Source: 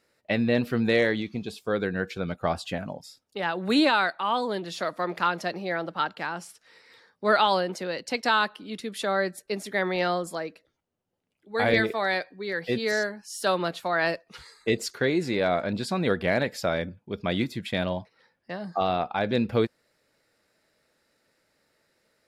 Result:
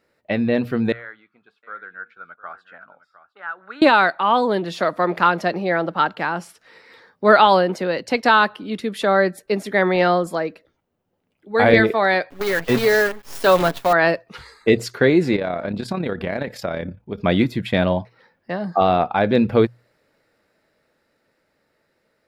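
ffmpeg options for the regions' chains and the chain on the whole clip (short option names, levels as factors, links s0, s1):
-filter_complex "[0:a]asettb=1/sr,asplit=3[s0][s1][s2];[s0]atrim=end=0.924[s3];[s1]atrim=start=0.92:end=3.82,asetpts=PTS-STARTPTS,afade=t=in:d=0.004:c=qsin,afade=t=out:st=2.896:d=0.004:c=qsin,bandpass=f=1400:t=q:w=7.5,aecho=1:1:708:0.141,atrim=end_sample=127890[s4];[s2]atrim=start=3.816[s5];[s3][s4]acrossfade=d=0.004:c1=hsin:c2=qsin[s6];[s6][s5]acrossfade=d=0.004:c1=qsin:c2=hsin,asettb=1/sr,asplit=3[s7][s8][s9];[s7]atrim=end=12.304[s10];[s8]atrim=start=12.3:end=13.93,asetpts=PTS-STARTPTS,afade=t=in:d=0.004:c=qsin,afade=t=out:st=1.626:d=0.004:c=qsin,acrusher=bits=6:dc=4:mix=0:aa=0.000001,aecho=1:1:7.2:0.43,atrim=end_sample=71883[s11];[s9]atrim=start=13.926[s12];[s10][s11]acrossfade=d=0.004:c1=hsin:c2=qsin[s13];[s13][s12]acrossfade=d=0.004:c1=qsin:c2=hsin,asettb=1/sr,asplit=3[s14][s15][s16];[s14]atrim=end=15.364[s17];[s15]atrim=start=15.36:end=17.18,asetpts=PTS-STARTPTS,afade=t=in:d=0.004:c=qsin,afade=t=out:st=1.816:d=0.004:c=qsin,acompressor=threshold=0.0355:ratio=3:attack=3.2:release=140:knee=1:detection=peak,tremolo=f=34:d=0.571[s18];[s16]atrim=start=17.176[s19];[s17][s18]acrossfade=d=0.004:c1=hsin:c2=qsin[s20];[s20][s19]acrossfade=d=0.004:c1=qsin:c2=hsin,equalizer=f=8100:w=0.4:g=-10,bandreject=f=60:t=h:w=6,bandreject=f=120:t=h:w=6,dynaudnorm=f=310:g=17:m=1.88,volume=1.68"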